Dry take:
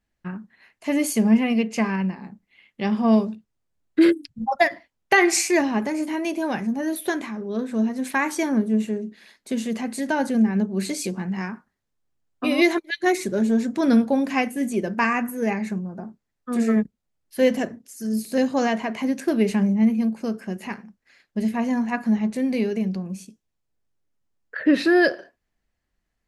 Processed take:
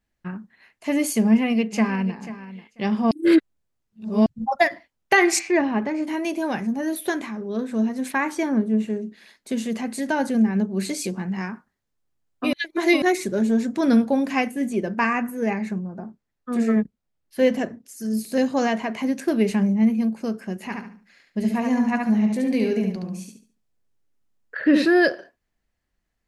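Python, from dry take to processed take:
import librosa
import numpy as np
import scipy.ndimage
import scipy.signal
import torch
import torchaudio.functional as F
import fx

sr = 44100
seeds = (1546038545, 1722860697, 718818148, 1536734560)

y = fx.echo_throw(x, sr, start_s=1.23, length_s=0.95, ms=490, feedback_pct=15, wet_db=-14.5)
y = fx.lowpass(y, sr, hz=fx.line((5.38, 2200.0), (6.06, 3900.0)), slope=12, at=(5.38, 6.06), fade=0.02)
y = fx.high_shelf(y, sr, hz=4400.0, db=-9.0, at=(8.12, 8.9))
y = fx.high_shelf(y, sr, hz=5400.0, db=-6.5, at=(14.51, 17.86))
y = fx.echo_feedback(y, sr, ms=71, feedback_pct=29, wet_db=-4, at=(20.65, 24.85))
y = fx.edit(y, sr, fx.reverse_span(start_s=3.11, length_s=1.15),
    fx.reverse_span(start_s=12.53, length_s=0.49), tone=tone)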